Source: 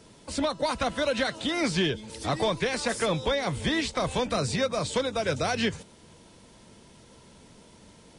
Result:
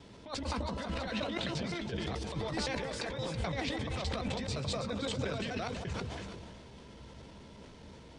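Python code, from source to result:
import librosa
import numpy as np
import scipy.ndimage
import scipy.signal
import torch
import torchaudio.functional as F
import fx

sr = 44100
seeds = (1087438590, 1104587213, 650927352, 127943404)

y = fx.block_reorder(x, sr, ms=86.0, group=3)
y = scipy.signal.sosfilt(scipy.signal.butter(2, 4700.0, 'lowpass', fs=sr, output='sos'), y)
y = fx.peak_eq(y, sr, hz=72.0, db=8.0, octaves=0.54)
y = fx.over_compress(y, sr, threshold_db=-32.0, ratio=-0.5)
y = fx.doubler(y, sr, ms=15.0, db=-12.5)
y = fx.echo_alternate(y, sr, ms=163, hz=1000.0, feedback_pct=63, wet_db=-7.0)
y = fx.sustainer(y, sr, db_per_s=23.0)
y = y * 10.0 ** (-6.0 / 20.0)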